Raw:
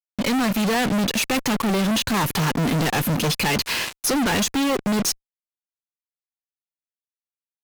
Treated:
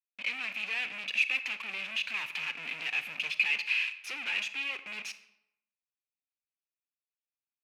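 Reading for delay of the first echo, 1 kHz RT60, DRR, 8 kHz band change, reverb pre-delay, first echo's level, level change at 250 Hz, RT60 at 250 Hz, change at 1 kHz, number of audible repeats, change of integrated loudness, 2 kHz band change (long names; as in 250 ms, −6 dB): no echo audible, 0.80 s, 11.0 dB, −24.0 dB, 31 ms, no echo audible, −36.0 dB, 0.80 s, −22.0 dB, no echo audible, −10.0 dB, −3.5 dB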